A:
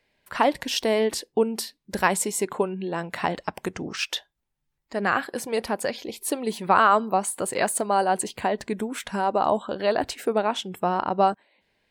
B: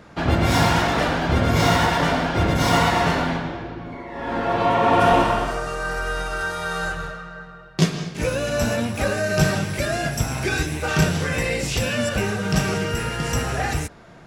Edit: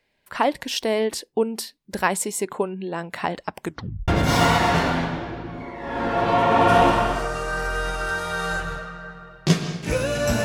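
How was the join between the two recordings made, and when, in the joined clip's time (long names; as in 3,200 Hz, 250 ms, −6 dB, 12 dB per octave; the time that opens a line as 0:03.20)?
A
0:03.65: tape stop 0.43 s
0:04.08: continue with B from 0:02.40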